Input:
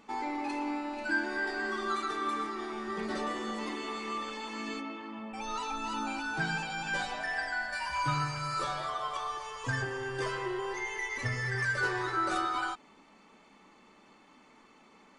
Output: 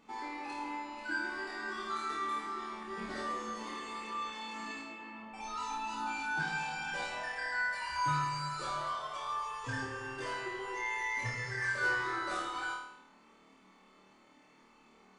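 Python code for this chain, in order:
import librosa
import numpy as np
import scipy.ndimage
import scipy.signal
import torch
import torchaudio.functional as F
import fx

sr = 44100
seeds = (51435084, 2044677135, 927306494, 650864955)

y = fx.room_flutter(x, sr, wall_m=4.5, rt60_s=0.73)
y = y * librosa.db_to_amplitude(-7.0)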